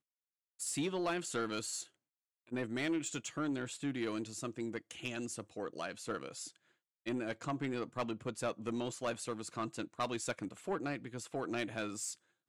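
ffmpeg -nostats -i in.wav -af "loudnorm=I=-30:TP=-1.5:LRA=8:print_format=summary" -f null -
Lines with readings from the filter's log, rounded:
Input Integrated:    -39.6 LUFS
Input True Peak:     -27.9 dBTP
Input LRA:             2.5 LU
Input Threshold:     -49.7 LUFS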